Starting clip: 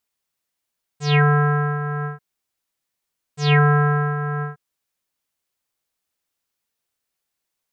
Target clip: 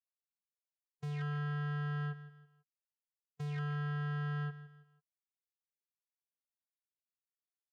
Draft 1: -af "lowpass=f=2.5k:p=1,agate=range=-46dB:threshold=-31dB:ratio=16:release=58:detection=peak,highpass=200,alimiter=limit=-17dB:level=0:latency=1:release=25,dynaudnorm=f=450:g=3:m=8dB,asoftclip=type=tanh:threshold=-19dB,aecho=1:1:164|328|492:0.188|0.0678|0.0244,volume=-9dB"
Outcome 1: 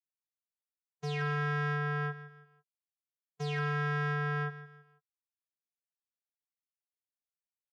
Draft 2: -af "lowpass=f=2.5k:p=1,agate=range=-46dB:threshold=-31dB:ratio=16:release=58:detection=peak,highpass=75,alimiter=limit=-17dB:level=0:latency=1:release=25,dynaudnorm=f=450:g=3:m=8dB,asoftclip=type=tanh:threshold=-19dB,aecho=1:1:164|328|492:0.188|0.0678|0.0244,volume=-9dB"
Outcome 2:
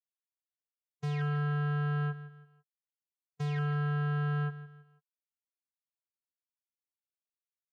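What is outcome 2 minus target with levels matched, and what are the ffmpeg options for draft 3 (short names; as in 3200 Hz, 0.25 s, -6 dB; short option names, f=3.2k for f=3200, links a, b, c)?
soft clip: distortion -4 dB
-af "lowpass=f=2.5k:p=1,agate=range=-46dB:threshold=-31dB:ratio=16:release=58:detection=peak,highpass=75,alimiter=limit=-17dB:level=0:latency=1:release=25,dynaudnorm=f=450:g=3:m=8dB,asoftclip=type=tanh:threshold=-27dB,aecho=1:1:164|328|492:0.188|0.0678|0.0244,volume=-9dB"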